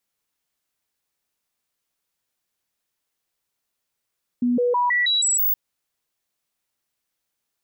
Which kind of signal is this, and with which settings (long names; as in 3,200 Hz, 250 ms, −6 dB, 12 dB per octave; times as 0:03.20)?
stepped sweep 244 Hz up, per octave 1, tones 7, 0.16 s, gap 0.00 s −17 dBFS